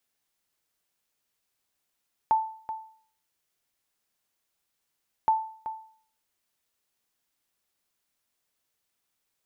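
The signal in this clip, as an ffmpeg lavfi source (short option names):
-f lavfi -i "aevalsrc='0.168*(sin(2*PI*882*mod(t,2.97))*exp(-6.91*mod(t,2.97)/0.51)+0.251*sin(2*PI*882*max(mod(t,2.97)-0.38,0))*exp(-6.91*max(mod(t,2.97)-0.38,0)/0.51))':d=5.94:s=44100"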